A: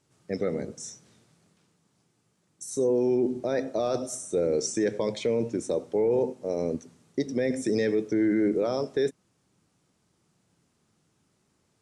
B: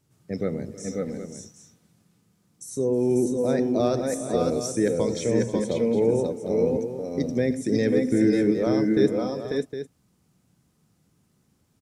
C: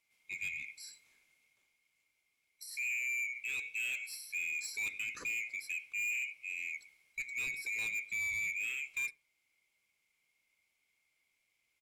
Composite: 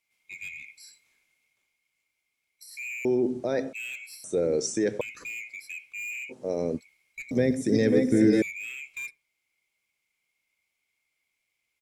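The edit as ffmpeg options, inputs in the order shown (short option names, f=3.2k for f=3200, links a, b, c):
-filter_complex "[0:a]asplit=3[a][b][c];[2:a]asplit=5[d][e][f][g][h];[d]atrim=end=3.052[i];[a]atrim=start=3.048:end=3.732[j];[e]atrim=start=3.728:end=4.242[k];[b]atrim=start=4.238:end=5.012[l];[f]atrim=start=5.008:end=6.33[m];[c]atrim=start=6.29:end=6.81[n];[g]atrim=start=6.77:end=7.312[o];[1:a]atrim=start=7.308:end=8.422[p];[h]atrim=start=8.418[q];[i][j]acrossfade=d=0.004:c1=hsin:c2=hsin[r];[r][k]acrossfade=d=0.004:c1=hsin:c2=hsin[s];[s][l]acrossfade=d=0.004:c1=hsin:c2=hsin[t];[t][m]acrossfade=d=0.004:c1=hsin:c2=hsin[u];[u][n]acrossfade=d=0.04:c1=tri:c2=tri[v];[v][o]acrossfade=d=0.04:c1=tri:c2=tri[w];[w][p]acrossfade=d=0.004:c1=hsin:c2=hsin[x];[x][q]acrossfade=d=0.004:c1=hsin:c2=hsin"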